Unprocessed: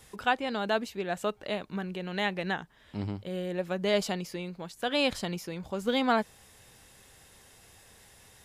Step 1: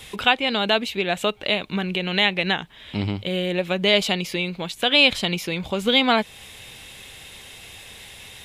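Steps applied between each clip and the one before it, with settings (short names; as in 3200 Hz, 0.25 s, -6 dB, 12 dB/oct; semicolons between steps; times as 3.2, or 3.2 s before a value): band shelf 2900 Hz +10 dB 1.1 oct; in parallel at +2 dB: compressor, threshold -33 dBFS, peak gain reduction 16 dB; on the sum: gain +3.5 dB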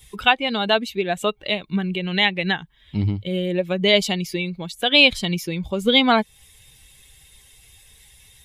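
per-bin expansion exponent 1.5; low shelf 120 Hz +5.5 dB; gain +3.5 dB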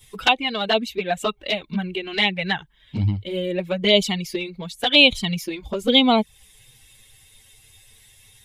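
envelope flanger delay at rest 9.8 ms, full sweep at -13 dBFS; gain +2 dB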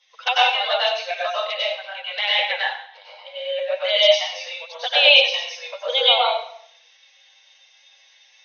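brick-wall FIR band-pass 470–6500 Hz; plate-style reverb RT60 0.6 s, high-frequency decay 0.95×, pre-delay 85 ms, DRR -6.5 dB; gain -5 dB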